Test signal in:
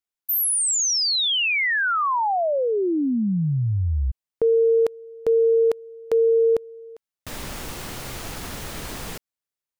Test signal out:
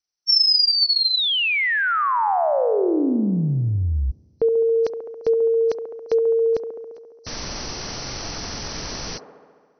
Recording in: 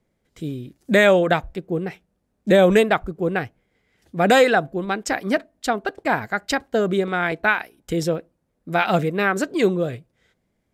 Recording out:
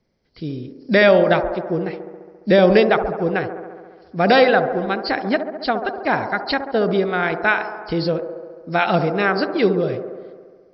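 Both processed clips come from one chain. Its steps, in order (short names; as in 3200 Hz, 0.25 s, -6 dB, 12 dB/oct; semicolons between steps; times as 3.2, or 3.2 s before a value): nonlinear frequency compression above 4000 Hz 4:1; on a send: band-limited delay 69 ms, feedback 75%, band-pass 560 Hz, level -7 dB; on the sum: gain +1 dB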